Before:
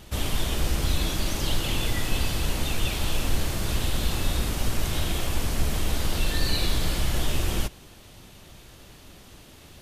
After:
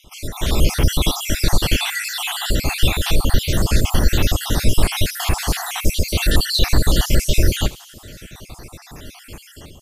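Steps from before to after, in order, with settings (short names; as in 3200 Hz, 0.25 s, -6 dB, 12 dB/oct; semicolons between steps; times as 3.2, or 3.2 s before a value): random spectral dropouts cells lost 60%; AGC gain up to 12 dB; thin delay 79 ms, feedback 76%, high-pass 4200 Hz, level -15.5 dB; gain +1.5 dB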